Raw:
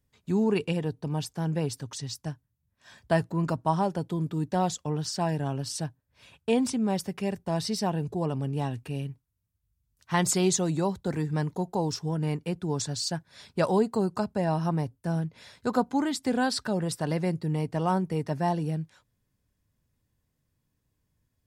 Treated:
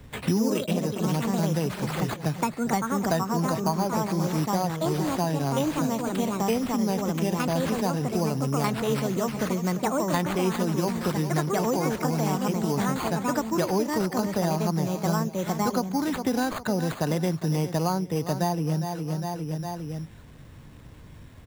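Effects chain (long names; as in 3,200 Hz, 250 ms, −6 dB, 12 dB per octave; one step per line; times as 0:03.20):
running median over 5 samples
bad sample-rate conversion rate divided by 8×, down none, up hold
on a send: repeating echo 407 ms, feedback 35%, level −14 dB
on the sum: delay with pitch and tempo change per echo 114 ms, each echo +3 semitones, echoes 2
multiband upward and downward compressor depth 100%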